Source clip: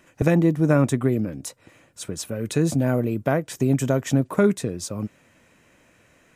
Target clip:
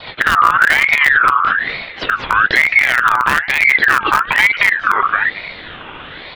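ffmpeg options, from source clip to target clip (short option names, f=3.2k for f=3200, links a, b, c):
-filter_complex "[0:a]adynamicequalizer=threshold=0.0282:dfrequency=230:dqfactor=0.93:tfrequency=230:tqfactor=0.93:attack=5:release=100:ratio=0.375:range=2.5:mode=boostabove:tftype=bell,asplit=2[a][b];[b]adelay=223,lowpass=f=1.1k:p=1,volume=-5.5dB,asplit=2[c][d];[d]adelay=223,lowpass=f=1.1k:p=1,volume=0.15,asplit=2[e][f];[f]adelay=223,lowpass=f=1.1k:p=1,volume=0.15[g];[c][e][g]amix=inputs=3:normalize=0[h];[a][h]amix=inputs=2:normalize=0,highpass=f=320:t=q:w=0.5412,highpass=f=320:t=q:w=1.307,lowpass=f=2.5k:t=q:w=0.5176,lowpass=f=2.5k:t=q:w=0.7071,lowpass=f=2.5k:t=q:w=1.932,afreqshift=-300,bandreject=f=176.2:t=h:w=4,bandreject=f=352.4:t=h:w=4,bandreject=f=528.6:t=h:w=4,bandreject=f=704.8:t=h:w=4,bandreject=f=881:t=h:w=4,bandreject=f=1.0572k:t=h:w=4,acompressor=threshold=-37dB:ratio=3,asplit=2[i][j];[j]acrusher=bits=4:mix=0:aa=0.000001,volume=-5.5dB[k];[i][k]amix=inputs=2:normalize=0,alimiter=level_in=30.5dB:limit=-1dB:release=50:level=0:latency=1,aeval=exprs='val(0)*sin(2*PI*1700*n/s+1700*0.3/1.1*sin(2*PI*1.1*n/s))':c=same"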